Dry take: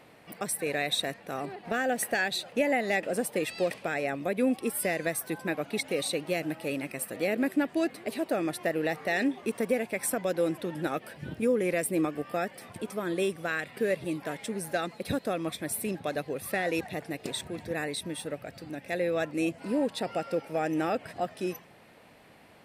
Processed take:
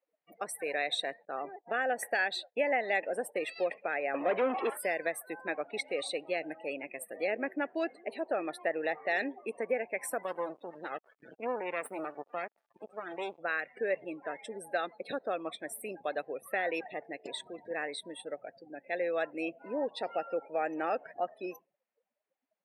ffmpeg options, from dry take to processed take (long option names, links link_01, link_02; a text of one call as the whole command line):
ffmpeg -i in.wav -filter_complex "[0:a]asettb=1/sr,asplit=3[link_01][link_02][link_03];[link_01]atrim=end=1.254[link_04];[link_02]atrim=start=1.25:end=3.56,asetpts=PTS-STARTPTS,afade=type=in:duration=0.004:curve=qsin,afade=type=out:start_time=2.306:duration=0.004:curve=qsin,agate=range=-33dB:threshold=-40dB:ratio=3:release=100:detection=peak[link_05];[link_03]atrim=start=3.556[link_06];[link_04][link_05]acrossfade=duration=0.004:curve1=hsin:curve2=qsin[link_07];[link_07][link_06]acrossfade=duration=0.004:curve1=qsin:curve2=hsin,asettb=1/sr,asplit=3[link_08][link_09][link_10];[link_08]atrim=end=4.144[link_11];[link_09]atrim=start=4.14:end=4.77,asetpts=PTS-STARTPTS,afade=type=in:duration=0.004:curve=qsin,afade=type=out:start_time=0.626:duration=0.004:curve=qsin,asplit=2[link_12][link_13];[link_13]highpass=frequency=720:poles=1,volume=28dB,asoftclip=type=tanh:threshold=-17dB[link_14];[link_12][link_14]amix=inputs=2:normalize=0,lowpass=frequency=1200:poles=1,volume=-6dB[link_15];[link_10]atrim=start=4.766[link_16];[link_11][link_15]acrossfade=duration=0.004:curve1=hsin:curve2=qsin[link_17];[link_17][link_16]acrossfade=duration=0.004:curve1=qsin:curve2=hsin,asplit=3[link_18][link_19][link_20];[link_18]afade=type=out:start_time=10.22:duration=0.02[link_21];[link_19]acrusher=bits=4:dc=4:mix=0:aa=0.000001,afade=type=in:start_time=10.22:duration=0.02,afade=type=out:start_time=13.39:duration=0.02[link_22];[link_20]afade=type=in:start_time=13.39:duration=0.02[link_23];[link_21][link_22][link_23]amix=inputs=3:normalize=0,afftdn=noise_reduction=35:noise_floor=-41,highpass=510,highshelf=frequency=4700:gain=-10.5" out.wav